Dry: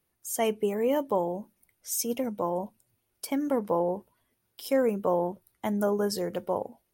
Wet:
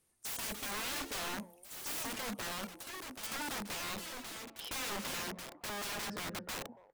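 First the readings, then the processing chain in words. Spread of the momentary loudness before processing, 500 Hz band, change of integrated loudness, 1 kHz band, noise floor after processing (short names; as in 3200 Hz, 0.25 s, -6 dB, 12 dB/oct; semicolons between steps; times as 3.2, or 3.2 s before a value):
10 LU, -20.5 dB, -10.0 dB, -9.5 dB, -63 dBFS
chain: high shelf 7900 Hz +7.5 dB; notches 60/120/180 Hz; in parallel at +1 dB: compressor 6:1, threshold -36 dBFS, peak gain reduction 15 dB; on the sum: low-pass sweep 8500 Hz -> 1600 Hz, 3.65–5.21; speakerphone echo 0.28 s, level -26 dB; wrapped overs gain 27 dB; echoes that change speed 0.237 s, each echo +4 st, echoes 2, each echo -6 dB; gain -8 dB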